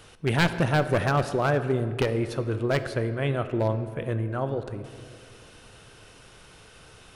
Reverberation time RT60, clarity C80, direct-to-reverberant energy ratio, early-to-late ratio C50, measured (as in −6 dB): 2.2 s, 12.0 dB, 10.0 dB, 11.0 dB